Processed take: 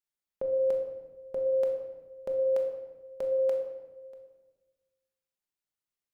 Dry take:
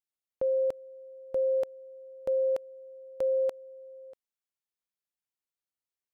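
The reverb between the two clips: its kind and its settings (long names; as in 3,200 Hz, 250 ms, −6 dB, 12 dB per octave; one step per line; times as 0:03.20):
rectangular room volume 740 cubic metres, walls mixed, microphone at 1.3 metres
level −2 dB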